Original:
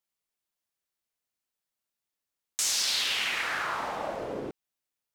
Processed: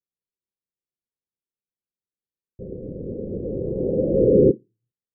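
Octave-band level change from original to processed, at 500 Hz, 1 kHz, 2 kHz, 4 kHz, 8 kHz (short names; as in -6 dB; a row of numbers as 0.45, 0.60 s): +18.5 dB, under -20 dB, under -40 dB, under -40 dB, under -40 dB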